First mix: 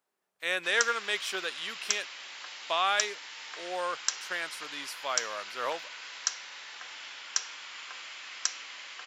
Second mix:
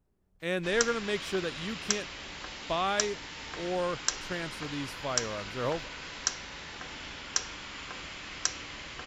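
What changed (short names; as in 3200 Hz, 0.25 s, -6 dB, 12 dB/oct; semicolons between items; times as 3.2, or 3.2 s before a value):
speech -6.5 dB; master: remove Bessel high-pass 1100 Hz, order 2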